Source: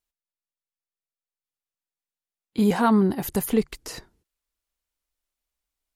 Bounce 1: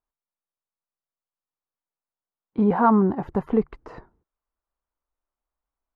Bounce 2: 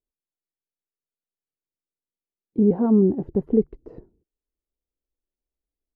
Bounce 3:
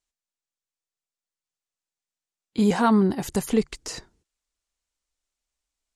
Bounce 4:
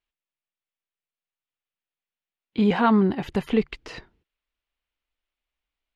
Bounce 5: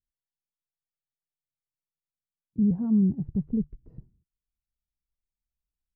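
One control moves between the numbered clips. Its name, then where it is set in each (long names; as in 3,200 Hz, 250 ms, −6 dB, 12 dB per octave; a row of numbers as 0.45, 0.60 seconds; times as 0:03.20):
low-pass with resonance, frequency: 1,100, 400, 7,500, 2,900, 150 Hertz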